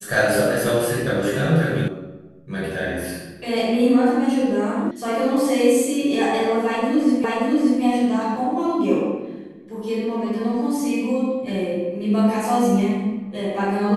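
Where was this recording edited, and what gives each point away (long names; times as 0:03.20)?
0:01.88: cut off before it has died away
0:04.91: cut off before it has died away
0:07.24: the same again, the last 0.58 s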